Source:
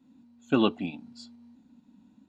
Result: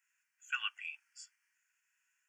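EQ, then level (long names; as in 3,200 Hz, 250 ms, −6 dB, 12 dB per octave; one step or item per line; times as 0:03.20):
elliptic high-pass filter 1,600 Hz, stop band 70 dB
Butterworth band-reject 3,900 Hz, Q 1.2
+5.5 dB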